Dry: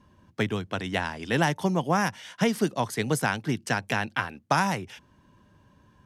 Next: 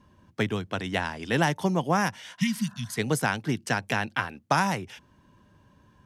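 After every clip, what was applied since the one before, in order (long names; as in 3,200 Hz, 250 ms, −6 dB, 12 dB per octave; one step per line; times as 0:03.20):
healed spectral selection 0:02.41–0:02.95, 240–1,800 Hz before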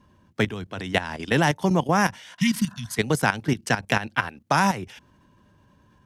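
output level in coarse steps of 13 dB
level +7 dB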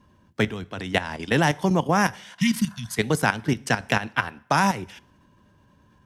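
dense smooth reverb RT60 0.61 s, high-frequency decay 0.9×, DRR 19.5 dB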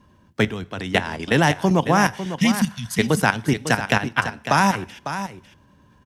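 single-tap delay 551 ms −10.5 dB
level +3 dB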